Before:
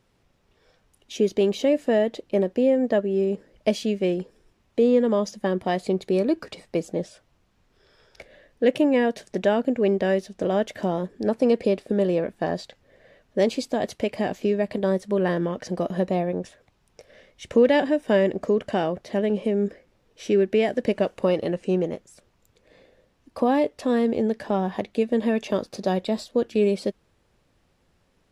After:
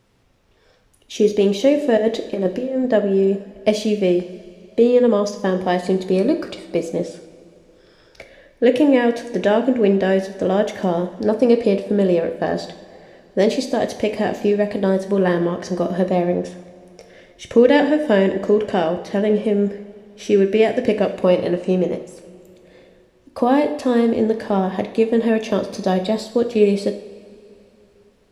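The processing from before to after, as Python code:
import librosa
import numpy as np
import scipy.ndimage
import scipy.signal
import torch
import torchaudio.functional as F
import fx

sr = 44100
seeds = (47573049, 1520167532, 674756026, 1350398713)

y = fx.over_compress(x, sr, threshold_db=-24.0, ratio=-0.5, at=(1.97, 2.85))
y = fx.rev_double_slope(y, sr, seeds[0], early_s=0.6, late_s=3.1, knee_db=-16, drr_db=6.5)
y = F.gain(torch.from_numpy(y), 4.5).numpy()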